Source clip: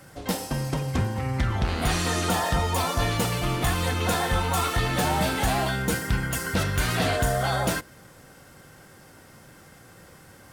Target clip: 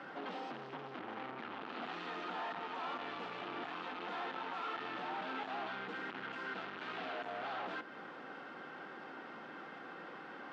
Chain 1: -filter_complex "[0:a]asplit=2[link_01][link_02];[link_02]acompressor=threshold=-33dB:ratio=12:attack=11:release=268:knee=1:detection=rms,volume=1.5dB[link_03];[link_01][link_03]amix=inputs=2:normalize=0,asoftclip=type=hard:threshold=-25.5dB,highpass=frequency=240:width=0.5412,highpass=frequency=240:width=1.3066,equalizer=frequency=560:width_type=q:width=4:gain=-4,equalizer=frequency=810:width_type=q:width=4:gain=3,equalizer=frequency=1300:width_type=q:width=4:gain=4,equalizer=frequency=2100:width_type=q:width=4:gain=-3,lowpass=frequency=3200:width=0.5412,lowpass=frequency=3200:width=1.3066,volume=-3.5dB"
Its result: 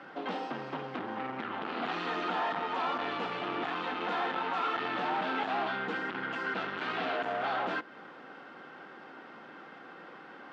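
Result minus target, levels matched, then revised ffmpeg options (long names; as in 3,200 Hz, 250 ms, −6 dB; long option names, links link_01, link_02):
hard clipping: distortion −4 dB
-filter_complex "[0:a]asplit=2[link_01][link_02];[link_02]acompressor=threshold=-33dB:ratio=12:attack=11:release=268:knee=1:detection=rms,volume=1.5dB[link_03];[link_01][link_03]amix=inputs=2:normalize=0,asoftclip=type=hard:threshold=-36dB,highpass=frequency=240:width=0.5412,highpass=frequency=240:width=1.3066,equalizer=frequency=560:width_type=q:width=4:gain=-4,equalizer=frequency=810:width_type=q:width=4:gain=3,equalizer=frequency=1300:width_type=q:width=4:gain=4,equalizer=frequency=2100:width_type=q:width=4:gain=-3,lowpass=frequency=3200:width=0.5412,lowpass=frequency=3200:width=1.3066,volume=-3.5dB"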